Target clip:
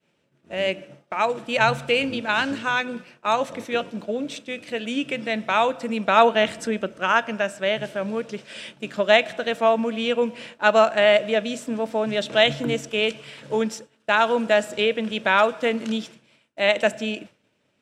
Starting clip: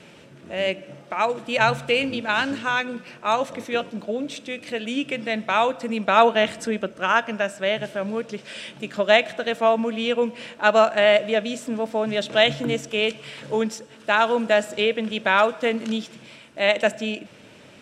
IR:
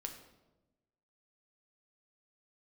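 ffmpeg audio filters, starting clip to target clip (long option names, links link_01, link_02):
-af "agate=range=-33dB:threshold=-34dB:ratio=3:detection=peak"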